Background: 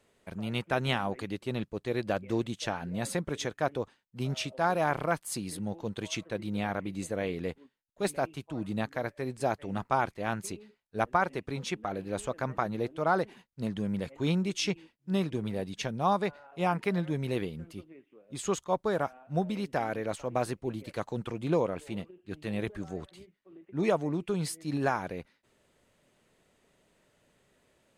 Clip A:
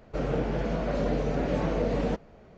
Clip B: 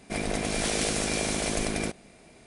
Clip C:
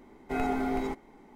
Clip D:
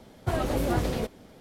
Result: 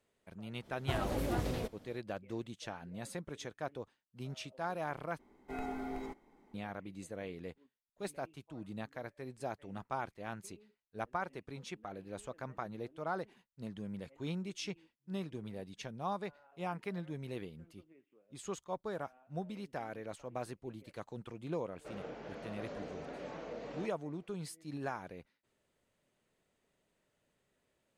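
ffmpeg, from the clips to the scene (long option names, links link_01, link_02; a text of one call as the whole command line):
ffmpeg -i bed.wav -i cue0.wav -i cue1.wav -i cue2.wav -i cue3.wav -filter_complex "[0:a]volume=-11dB[link_01];[1:a]highpass=frequency=520:poles=1[link_02];[link_01]asplit=2[link_03][link_04];[link_03]atrim=end=5.194[link_05];[3:a]atrim=end=1.35,asetpts=PTS-STARTPTS,volume=-11dB[link_06];[link_04]atrim=start=6.536[link_07];[4:a]atrim=end=1.4,asetpts=PTS-STARTPTS,volume=-8.5dB,afade=type=in:duration=0.05,afade=type=out:start_time=1.35:duration=0.05,adelay=610[link_08];[link_02]atrim=end=2.57,asetpts=PTS-STARTPTS,volume=-12.5dB,afade=type=in:duration=0.004:curve=hsin,afade=type=out:start_time=2.566:duration=0.004:curve=hsin,adelay=21710[link_09];[link_05][link_06]acrossfade=duration=0.004:curve1=hsin:curve2=hsin[link_10];[link_10][link_07]acrossfade=duration=0.004:curve1=hsin:curve2=hsin[link_11];[link_11][link_08][link_09]amix=inputs=3:normalize=0" out.wav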